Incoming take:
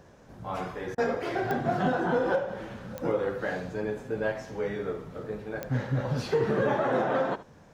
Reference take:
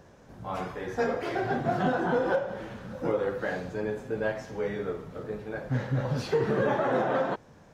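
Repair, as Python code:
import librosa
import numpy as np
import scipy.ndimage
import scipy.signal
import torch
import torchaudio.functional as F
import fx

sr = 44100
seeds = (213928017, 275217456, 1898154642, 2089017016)

y = fx.fix_declick_ar(x, sr, threshold=10.0)
y = fx.fix_interpolate(y, sr, at_s=(0.95,), length_ms=28.0)
y = fx.fix_echo_inverse(y, sr, delay_ms=72, level_db=-16.0)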